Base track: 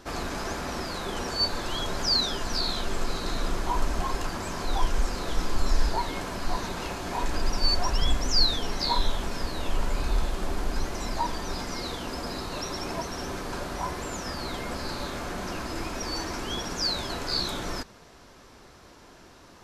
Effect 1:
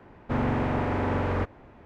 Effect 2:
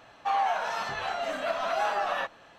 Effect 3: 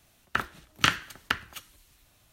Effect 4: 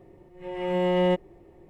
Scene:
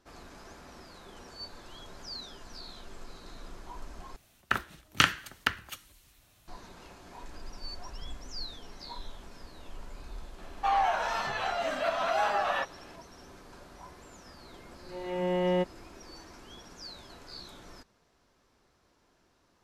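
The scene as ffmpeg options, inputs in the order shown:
-filter_complex "[0:a]volume=-17.5dB,asplit=2[a][b];[a]atrim=end=4.164[c];[3:a]atrim=end=2.32,asetpts=PTS-STARTPTS,volume=-0.5dB[d];[b]atrim=start=6.476[e];[2:a]atrim=end=2.58,asetpts=PTS-STARTPTS,afade=t=in:d=0.004:c=hsin,afade=t=out:st=2.576:d=0.004:c=hsin,adelay=10380[f];[4:a]atrim=end=1.69,asetpts=PTS-STARTPTS,volume=-5dB,afade=t=in:d=0.004:c=hsin,afade=t=out:st=1.686:d=0.004:c=hsin,adelay=14480[g];[c][d]acrossfade=d=0.004:c1=hsin:c2=hsin[h];[h][e]acrossfade=d=0.004:c1=hsin:c2=hsin[i];[i][f][g]amix=inputs=3:normalize=0"

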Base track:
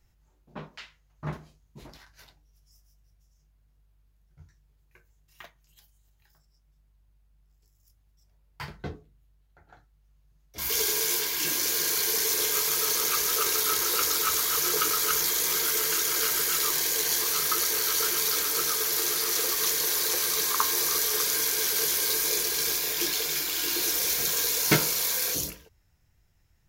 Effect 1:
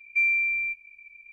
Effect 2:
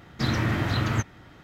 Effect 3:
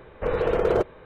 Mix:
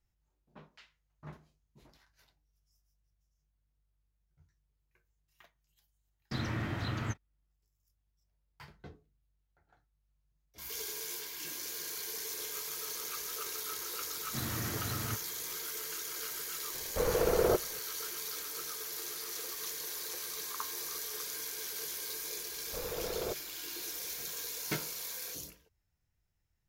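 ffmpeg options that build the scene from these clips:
-filter_complex "[2:a]asplit=2[a][b];[3:a]asplit=2[c][d];[0:a]volume=-14dB[e];[a]agate=range=-37dB:threshold=-37dB:ratio=16:release=100:detection=peak,atrim=end=1.43,asetpts=PTS-STARTPTS,volume=-10.5dB,afade=t=in:d=0.004:c=hsin,afade=t=out:st=1.426:d=0.004:c=hsin,adelay=6110[f];[b]atrim=end=1.43,asetpts=PTS-STARTPTS,volume=-13.5dB,afade=t=in:d=0.004:c=hsin,afade=t=out:st=1.426:d=0.004:c=hsin,adelay=14140[g];[c]atrim=end=1.05,asetpts=PTS-STARTPTS,volume=-6dB,afade=t=in:d=0.004:c=hsin,afade=t=out:st=1.046:d=0.004:c=hsin,adelay=16740[h];[d]atrim=end=1.05,asetpts=PTS-STARTPTS,volume=-16dB,afade=t=in:d=0.004:c=hsin,afade=t=out:st=1.046:d=0.004:c=hsin,adelay=22510[i];[e][f][g][h][i]amix=inputs=5:normalize=0"

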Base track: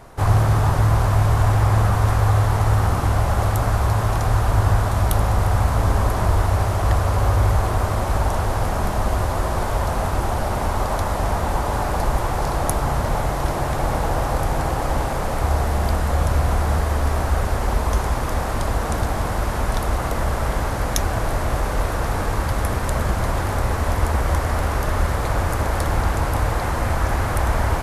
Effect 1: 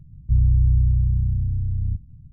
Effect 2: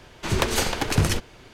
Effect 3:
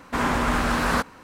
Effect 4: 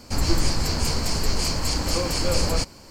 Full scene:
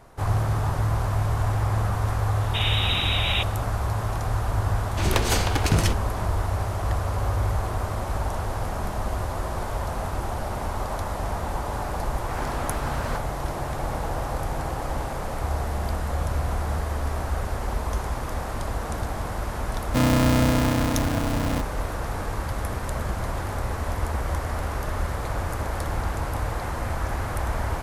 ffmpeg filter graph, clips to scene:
-filter_complex "[3:a]asplit=2[a][b];[0:a]volume=-7dB[c];[a]lowpass=f=3.3k:t=q:w=0.5098,lowpass=f=3.3k:t=q:w=0.6013,lowpass=f=3.3k:t=q:w=0.9,lowpass=f=3.3k:t=q:w=2.563,afreqshift=-3900[d];[b]highpass=f=250:w=0.5412,highpass=f=250:w=1.3066[e];[1:a]aeval=exprs='val(0)*sgn(sin(2*PI*190*n/s))':c=same[f];[d]atrim=end=1.23,asetpts=PTS-STARTPTS,volume=-4dB,afade=t=in:d=0.004:c=hsin,afade=t=out:st=1.226:d=0.004:c=hsin,adelay=2410[g];[2:a]atrim=end=1.53,asetpts=PTS-STARTPTS,volume=-1dB,afade=t=in:d=0.004:c=hsin,afade=t=out:st=1.526:d=0.004:c=hsin,adelay=4740[h];[e]atrim=end=1.23,asetpts=PTS-STARTPTS,volume=-11.5dB,afade=t=in:d=0.004:c=hsin,afade=t=out:st=1.226:d=0.004:c=hsin,adelay=12160[i];[f]atrim=end=2.32,asetpts=PTS-STARTPTS,volume=-4dB,afade=t=in:d=0.004:c=hsin,afade=t=out:st=2.316:d=0.004:c=hsin,adelay=19650[j];[c][g][h][i][j]amix=inputs=5:normalize=0"

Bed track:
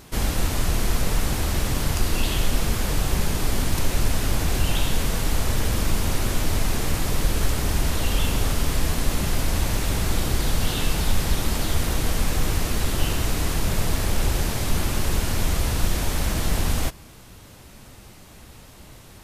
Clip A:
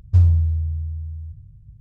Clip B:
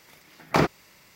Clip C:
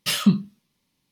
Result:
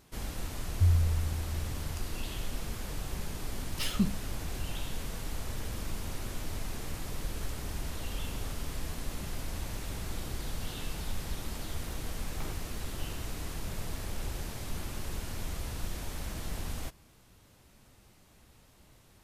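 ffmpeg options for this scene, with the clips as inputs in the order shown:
-filter_complex "[0:a]volume=-14.5dB[a];[2:a]acompressor=threshold=-26dB:ratio=6:attack=3.2:release=140:knee=1:detection=peak[b];[1:a]atrim=end=1.8,asetpts=PTS-STARTPTS,volume=-10.5dB,afade=t=in:d=0.004:c=hsin,afade=t=out:st=1.796:d=0.004:c=hsin,adelay=670[c];[3:a]atrim=end=1.11,asetpts=PTS-STARTPTS,volume=-11.5dB,afade=t=in:d=0.004:c=hsin,afade=t=out:st=1.106:d=0.004:c=hsin,adelay=164493S[d];[b]atrim=end=1.15,asetpts=PTS-STARTPTS,volume=-15.5dB,afade=t=in:d=0.004:c=hsin,afade=t=out:st=1.146:d=0.004:c=hsin,adelay=523026S[e];[a][c][d][e]amix=inputs=4:normalize=0"

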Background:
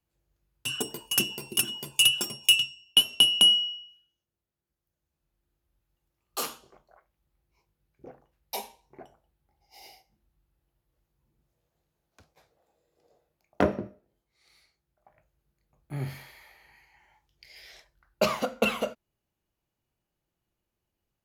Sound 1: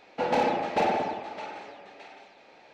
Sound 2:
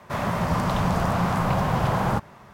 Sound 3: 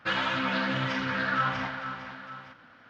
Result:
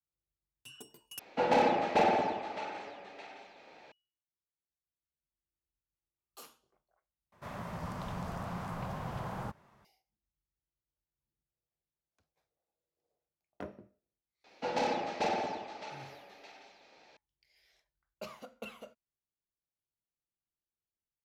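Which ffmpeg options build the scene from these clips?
-filter_complex "[1:a]asplit=2[a][b];[0:a]volume=-20dB[c];[b]equalizer=f=5.4k:t=o:w=1.2:g=8.5[d];[c]asplit=3[e][f][g];[e]atrim=end=1.194[h];[a]atrim=end=2.73,asetpts=PTS-STARTPTS,volume=-1.5dB[i];[f]atrim=start=3.916:end=7.324[j];[2:a]atrim=end=2.53,asetpts=PTS-STARTPTS,volume=-16.5dB[k];[g]atrim=start=9.846[l];[d]atrim=end=2.73,asetpts=PTS-STARTPTS,volume=-7.5dB,afade=t=in:d=0.004:c=hsin,afade=t=out:st=2.726:d=0.004:c=hsin,adelay=636804S[m];[h][i]acrossfade=d=0.004:c1=hsin:c2=hsin[n];[n][j]acrossfade=d=0.004:c1=hsin:c2=hsin[o];[o][k]acrossfade=d=0.004:c1=hsin:c2=hsin[p];[p][l]acrossfade=d=0.004:c1=hsin:c2=hsin[q];[q][m]amix=inputs=2:normalize=0"

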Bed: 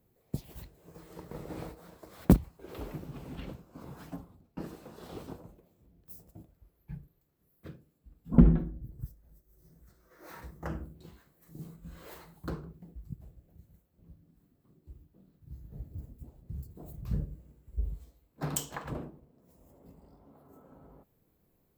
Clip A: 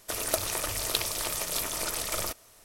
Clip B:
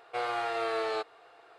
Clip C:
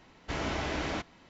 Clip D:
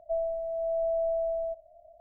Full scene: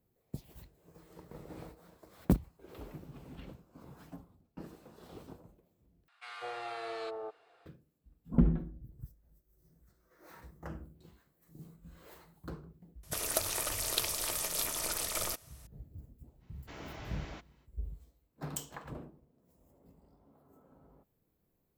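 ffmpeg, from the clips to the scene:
-filter_complex "[0:a]volume=-6.5dB[a];[2:a]acrossover=split=1100[b][c];[b]adelay=200[d];[d][c]amix=inputs=2:normalize=0[e];[1:a]highshelf=f=6k:g=3[f];[a]asplit=2[g][h];[g]atrim=end=6.084[i];[e]atrim=end=1.58,asetpts=PTS-STARTPTS,volume=-7.5dB[j];[h]atrim=start=7.656[k];[f]atrim=end=2.64,asetpts=PTS-STARTPTS,volume=-5dB,afade=t=in:d=0.004:c=hsin,afade=t=out:st=2.636:d=0.004:c=hsin,adelay=13030[l];[3:a]atrim=end=1.29,asetpts=PTS-STARTPTS,volume=-14dB,afade=t=in:d=0.05,afade=t=out:st=1.24:d=0.05,adelay=16390[m];[i][j]acrossfade=d=0.004:c1=hsin:c2=hsin[n];[n][k]acrossfade=d=0.004:c1=hsin:c2=hsin[o];[o][l][m]amix=inputs=3:normalize=0"

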